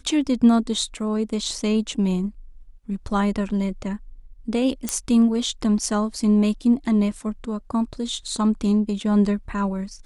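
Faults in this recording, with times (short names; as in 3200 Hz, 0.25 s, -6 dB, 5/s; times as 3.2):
4.89 pop -8 dBFS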